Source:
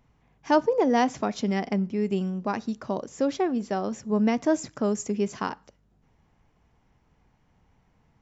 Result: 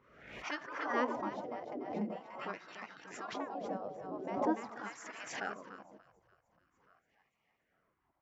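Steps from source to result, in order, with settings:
on a send: echo with a time of its own for lows and highs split 730 Hz, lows 145 ms, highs 291 ms, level −6 dB
on the sum: LFO wah 0.44 Hz 290–1,600 Hz, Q 6.7
gate on every frequency bin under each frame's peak −15 dB weak
background raised ahead of every attack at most 63 dB per second
level +12 dB

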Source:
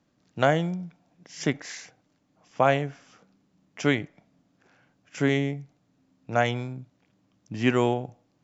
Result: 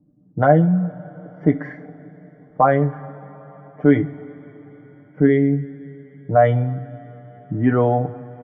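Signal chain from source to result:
expanding power law on the bin magnitudes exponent 1.5
low-pass that shuts in the quiet parts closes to 390 Hz, open at −20 dBFS
comb filter 6.7 ms
in parallel at +0.5 dB: brickwall limiter −22.5 dBFS, peak gain reduction 15.5 dB
on the sum: Savitzky-Golay smoothing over 41 samples
on a send at −8.5 dB: convolution reverb, pre-delay 3 ms
on the sum: level +4 dB

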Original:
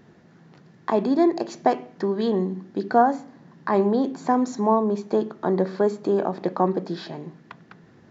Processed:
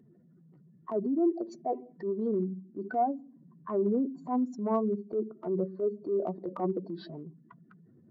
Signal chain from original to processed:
expanding power law on the bin magnitudes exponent 2.2
transient designer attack −8 dB, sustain −2 dB
notch comb filter 830 Hz
level −5.5 dB

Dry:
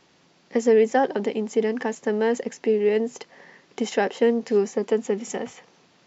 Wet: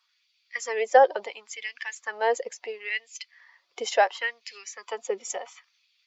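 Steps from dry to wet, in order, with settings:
spectral dynamics exaggerated over time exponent 1.5
parametric band 4,600 Hz +3 dB 0.77 octaves
auto-filter high-pass sine 0.72 Hz 490–2,500 Hz
parametric band 250 Hz −13.5 dB 1.3 octaves
level +3 dB

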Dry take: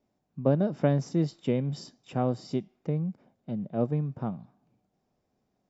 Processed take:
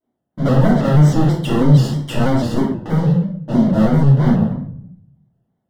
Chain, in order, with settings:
high-pass filter 84 Hz 12 dB per octave
flat-topped bell 5,400 Hz −14 dB 1 octave
in parallel at −1.5 dB: output level in coarse steps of 19 dB
on the sum: leveller curve on the samples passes 5
brickwall limiter −20.5 dBFS, peak gain reduction 10 dB
Butterworth band-reject 2,400 Hz, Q 3.8
rectangular room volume 130 cubic metres, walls mixed, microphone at 2.7 metres
pitch modulation by a square or saw wave square 3.1 Hz, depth 100 cents
level −1.5 dB

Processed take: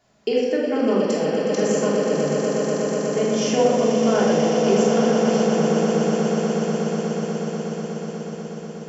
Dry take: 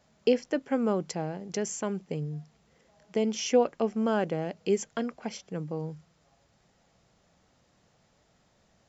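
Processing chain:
low-shelf EQ 100 Hz −9.5 dB
echo that builds up and dies away 122 ms, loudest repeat 8, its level −9 dB
rectangular room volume 1,100 cubic metres, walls mixed, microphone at 3.2 metres

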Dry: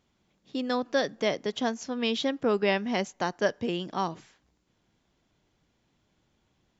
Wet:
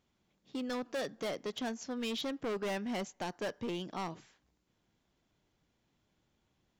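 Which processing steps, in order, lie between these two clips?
hard clipping −27.5 dBFS, distortion −8 dB
level −5.5 dB

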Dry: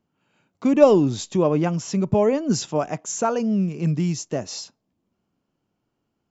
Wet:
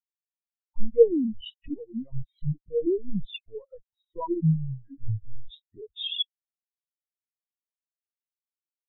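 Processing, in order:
gliding playback speed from 83% → 59%
downward compressor 8 to 1, threshold −26 dBFS, peak gain reduction 18.5 dB
leveller curve on the samples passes 1
brickwall limiter −25 dBFS, peak gain reduction 9 dB
tilt shelving filter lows −7 dB, about 920 Hz
reverb reduction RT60 1.2 s
leveller curve on the samples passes 1
linear-prediction vocoder at 8 kHz pitch kept
automatic gain control
every bin expanded away from the loudest bin 4 to 1

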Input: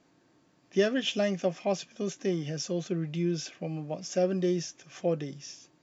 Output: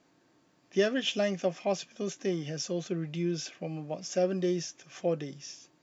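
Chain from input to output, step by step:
low-shelf EQ 250 Hz −4 dB

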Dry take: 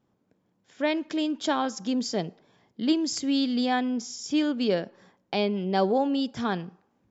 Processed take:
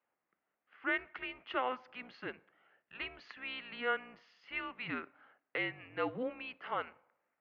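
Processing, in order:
sub-octave generator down 2 octaves, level +1 dB
wrong playback speed 25 fps video run at 24 fps
single-sideband voice off tune −250 Hz 410–2,400 Hz
first difference
level +13.5 dB

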